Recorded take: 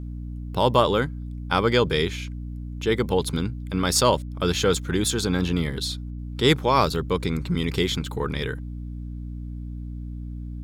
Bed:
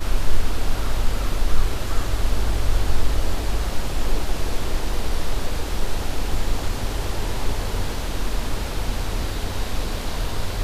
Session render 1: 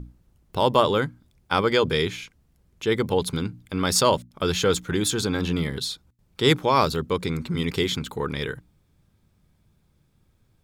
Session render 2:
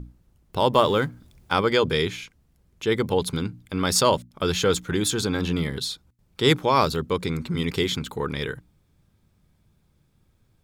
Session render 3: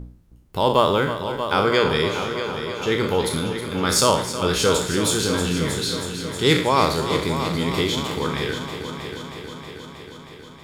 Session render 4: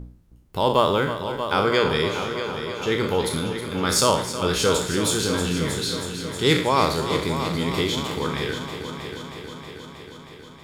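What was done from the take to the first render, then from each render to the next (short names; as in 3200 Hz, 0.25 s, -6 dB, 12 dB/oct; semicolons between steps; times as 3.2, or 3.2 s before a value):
notches 60/120/180/240/300 Hz
0.73–1.53 G.711 law mismatch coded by mu
spectral trails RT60 0.53 s; multi-head echo 0.317 s, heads first and second, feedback 67%, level -12 dB
gain -1.5 dB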